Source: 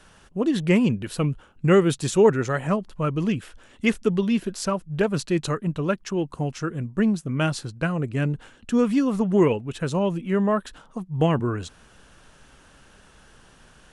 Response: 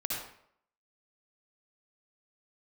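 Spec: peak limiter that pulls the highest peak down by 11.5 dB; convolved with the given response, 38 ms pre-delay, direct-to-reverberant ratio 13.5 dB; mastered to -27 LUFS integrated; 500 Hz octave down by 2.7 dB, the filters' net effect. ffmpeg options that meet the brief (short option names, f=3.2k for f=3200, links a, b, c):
-filter_complex "[0:a]equalizer=f=500:t=o:g=-3.5,alimiter=limit=-18.5dB:level=0:latency=1,asplit=2[a][b];[1:a]atrim=start_sample=2205,adelay=38[c];[b][c]afir=irnorm=-1:irlink=0,volume=-18dB[d];[a][d]amix=inputs=2:normalize=0,volume=1.5dB"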